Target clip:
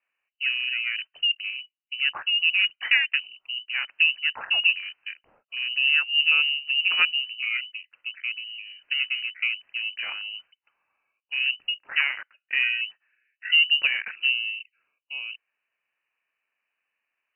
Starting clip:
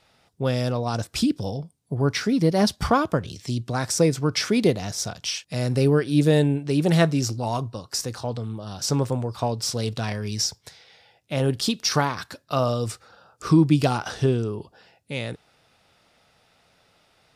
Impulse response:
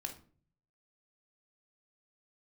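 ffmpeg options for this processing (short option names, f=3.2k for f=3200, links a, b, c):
-filter_complex "[0:a]acrossover=split=220 2200:gain=0.224 1 0.2[a][b][c];[a][b][c]amix=inputs=3:normalize=0,afwtdn=0.0178,lowpass=f=2.6k:t=q:w=0.5098,lowpass=f=2.6k:t=q:w=0.6013,lowpass=f=2.6k:t=q:w=0.9,lowpass=f=2.6k:t=q:w=2.563,afreqshift=-3100"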